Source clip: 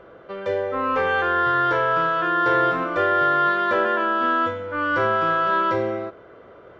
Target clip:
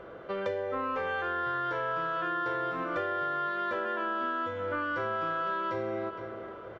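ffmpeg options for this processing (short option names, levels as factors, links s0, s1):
-filter_complex "[0:a]asplit=2[s0][s1];[s1]adelay=465,lowpass=f=3500:p=1,volume=0.126,asplit=2[s2][s3];[s3]adelay=465,lowpass=f=3500:p=1,volume=0.33,asplit=2[s4][s5];[s5]adelay=465,lowpass=f=3500:p=1,volume=0.33[s6];[s0][s2][s4][s6]amix=inputs=4:normalize=0,acompressor=threshold=0.0355:ratio=10"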